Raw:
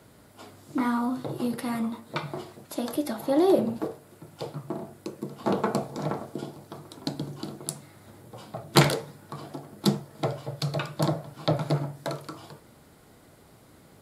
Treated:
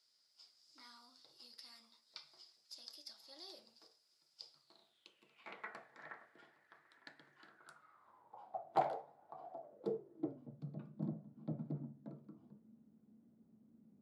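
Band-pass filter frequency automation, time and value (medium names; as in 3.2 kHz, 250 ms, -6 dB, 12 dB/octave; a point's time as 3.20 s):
band-pass filter, Q 9
4.53 s 5 kHz
5.75 s 1.8 kHz
7.40 s 1.8 kHz
8.57 s 740 Hz
9.51 s 740 Hz
10.54 s 220 Hz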